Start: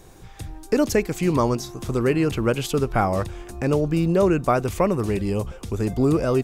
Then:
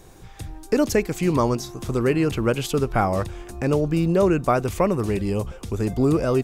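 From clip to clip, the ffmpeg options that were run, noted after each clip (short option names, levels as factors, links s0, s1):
-af anull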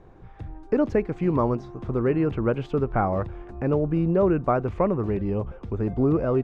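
-af "lowpass=1500,volume=0.794"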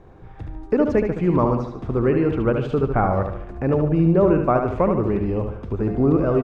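-af "aecho=1:1:73|146|219|292|365|438:0.501|0.231|0.106|0.0488|0.0224|0.0103,volume=1.41"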